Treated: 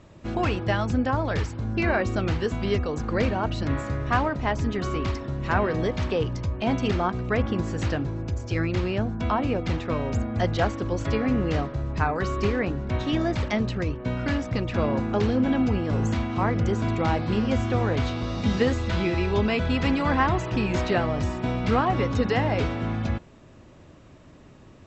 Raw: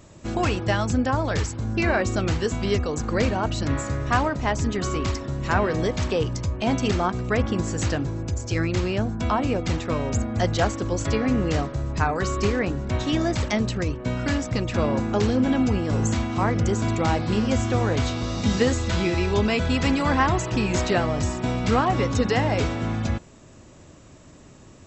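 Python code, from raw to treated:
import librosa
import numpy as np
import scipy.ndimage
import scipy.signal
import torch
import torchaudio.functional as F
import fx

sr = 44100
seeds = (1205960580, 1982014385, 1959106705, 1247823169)

y = scipy.signal.sosfilt(scipy.signal.butter(2, 3900.0, 'lowpass', fs=sr, output='sos'), x)
y = F.gain(torch.from_numpy(y), -1.5).numpy()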